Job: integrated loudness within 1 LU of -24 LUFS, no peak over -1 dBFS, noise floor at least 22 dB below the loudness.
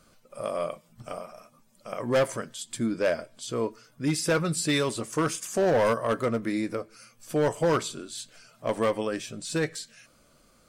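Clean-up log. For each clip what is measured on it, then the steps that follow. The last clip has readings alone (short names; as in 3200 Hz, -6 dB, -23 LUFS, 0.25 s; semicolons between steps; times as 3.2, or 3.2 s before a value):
clipped 1.3%; flat tops at -18.5 dBFS; loudness -28.5 LUFS; peak -18.5 dBFS; loudness target -24.0 LUFS
-> clip repair -18.5 dBFS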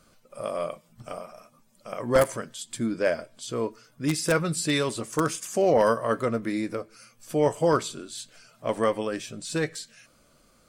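clipped 0.0%; loudness -27.0 LUFS; peak -9.5 dBFS; loudness target -24.0 LUFS
-> gain +3 dB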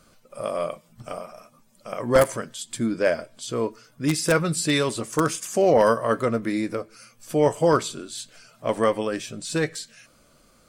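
loudness -24.0 LUFS; peak -6.5 dBFS; noise floor -58 dBFS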